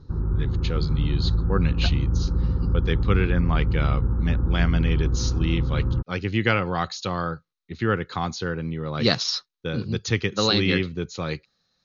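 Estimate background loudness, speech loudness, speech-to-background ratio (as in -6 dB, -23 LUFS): -25.0 LUFS, -26.5 LUFS, -1.5 dB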